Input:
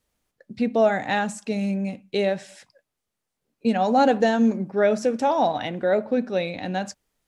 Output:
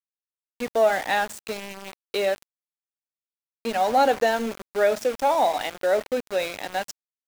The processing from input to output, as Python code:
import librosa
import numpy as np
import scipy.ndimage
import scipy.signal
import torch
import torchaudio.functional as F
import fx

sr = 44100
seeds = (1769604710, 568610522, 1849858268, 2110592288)

p1 = 10.0 ** (-26.0 / 20.0) * np.tanh(x / 10.0 ** (-26.0 / 20.0))
p2 = x + (p1 * librosa.db_to_amplitude(-8.0))
p3 = scipy.signal.sosfilt(scipy.signal.butter(2, 450.0, 'highpass', fs=sr, output='sos'), p2)
y = np.where(np.abs(p3) >= 10.0 ** (-30.5 / 20.0), p3, 0.0)